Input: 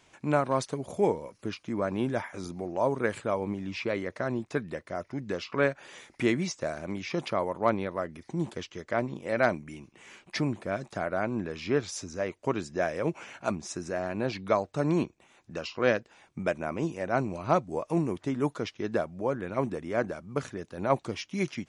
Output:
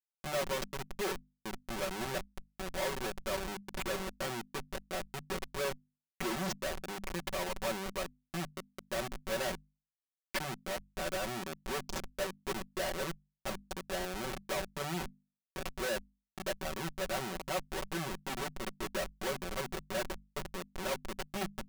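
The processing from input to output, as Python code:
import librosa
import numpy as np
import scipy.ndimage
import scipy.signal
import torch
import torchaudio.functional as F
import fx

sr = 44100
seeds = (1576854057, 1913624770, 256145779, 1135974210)

y = scipy.signal.sosfilt(scipy.signal.butter(2, 87.0, 'highpass', fs=sr, output='sos'), x)
y = fx.schmitt(y, sr, flips_db=-29.5)
y = fx.low_shelf(y, sr, hz=310.0, db=-11.0)
y = fx.hum_notches(y, sr, base_hz=50, count=5)
y = y + 0.94 * np.pad(y, (int(5.3 * sr / 1000.0), 0))[:len(y)]
y = y * librosa.db_to_amplitude(-2.0)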